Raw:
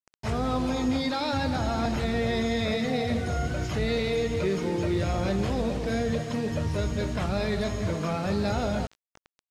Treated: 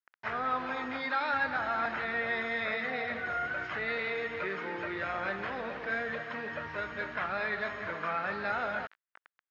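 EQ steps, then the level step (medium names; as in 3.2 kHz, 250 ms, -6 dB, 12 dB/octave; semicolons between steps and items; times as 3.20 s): band-pass filter 1.6 kHz, Q 2.4; distance through air 170 m; +8.5 dB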